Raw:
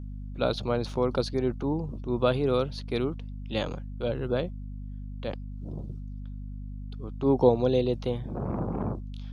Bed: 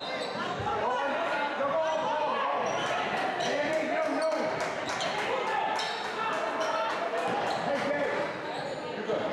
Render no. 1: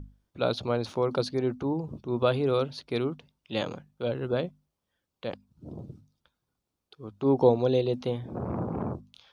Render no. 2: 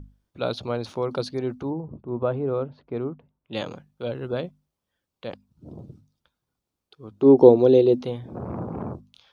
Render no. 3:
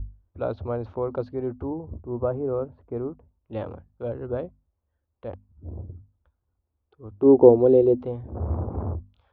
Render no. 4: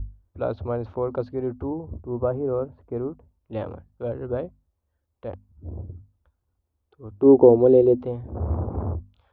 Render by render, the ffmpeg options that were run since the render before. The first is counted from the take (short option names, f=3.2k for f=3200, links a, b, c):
-af "bandreject=f=50:t=h:w=6,bandreject=f=100:t=h:w=6,bandreject=f=150:t=h:w=6,bandreject=f=200:t=h:w=6,bandreject=f=250:t=h:w=6"
-filter_complex "[0:a]asettb=1/sr,asplit=3[a][b][c];[a]atrim=end=1.704[d];[b]atrim=start=1.7:end=3.53,asetpts=PTS-STARTPTS,afade=t=in:d=0.004:c=qsin,afade=t=out:st=1.826:d=0.004:c=qsin,lowpass=1.2k[e];[c]atrim=start=3.526[f];[d][e]acrossfade=d=0.004:c1=hsin:c2=qsin[g];[g][f]acrossfade=d=0.004:c1=qsin:c2=hsin,asettb=1/sr,asplit=3[h][i][j];[h]atrim=end=7.114[k];[i]atrim=start=7.11:end=8.06,asetpts=PTS-STARTPTS,afade=t=in:d=0.004:c=qsin,afade=t=out:st=0.946:d=0.004:c=qsin,equalizer=f=350:t=o:w=1.3:g=12.5[l];[j]atrim=start=8.056[m];[k][l]acrossfade=d=0.004:c1=hsin:c2=qsin[n];[n][m]acrossfade=d=0.004:c1=qsin:c2=hsin"
-af "lowpass=1.1k,lowshelf=f=110:t=q:w=3:g=9"
-af "volume=1.5dB,alimiter=limit=-3dB:level=0:latency=1"